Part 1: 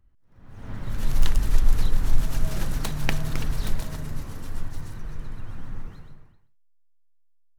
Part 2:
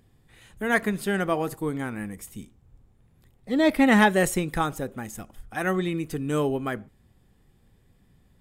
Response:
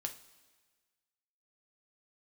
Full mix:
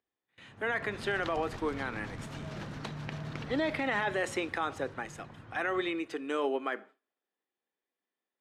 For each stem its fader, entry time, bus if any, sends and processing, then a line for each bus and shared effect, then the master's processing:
5.75 s -5.5 dB -> 6.01 s -12.5 dB, 0.00 s, no send, none
+1.0 dB, 0.00 s, send -12.5 dB, high-pass 290 Hz 24 dB/octave; bass shelf 430 Hz -10 dB; peak limiter -19 dBFS, peak gain reduction 11 dB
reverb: on, pre-delay 3 ms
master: gate with hold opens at -42 dBFS; band-pass 140–3700 Hz; peak limiter -21.5 dBFS, peak gain reduction 9 dB

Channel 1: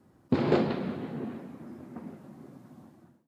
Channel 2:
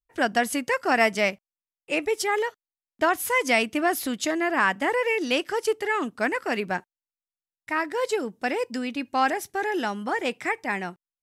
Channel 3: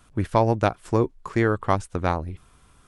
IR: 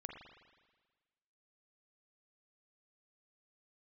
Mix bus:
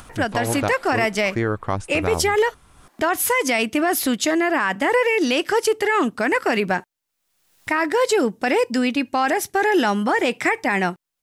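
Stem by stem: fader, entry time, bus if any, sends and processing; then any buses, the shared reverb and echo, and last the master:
0.0 dB, 0.00 s, no bus, no send, high-pass 970 Hz 12 dB/octave
+2.0 dB, 0.00 s, bus A, no send, none
-5.5 dB, 0.00 s, bus A, no send, none
bus A: 0.0 dB, level rider gain up to 11.5 dB; peak limiter -10.5 dBFS, peak gain reduction 9 dB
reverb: none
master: upward compressor, threshold -29 dBFS

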